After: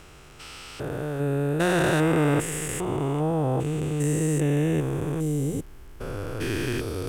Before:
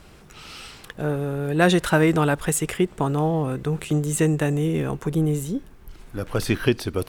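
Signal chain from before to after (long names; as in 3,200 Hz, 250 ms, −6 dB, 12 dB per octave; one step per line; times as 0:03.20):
spectrum averaged block by block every 400 ms
thirty-one-band graphic EQ 200 Hz −10 dB, 4,000 Hz −4 dB, 8,000 Hz +3 dB
level +1.5 dB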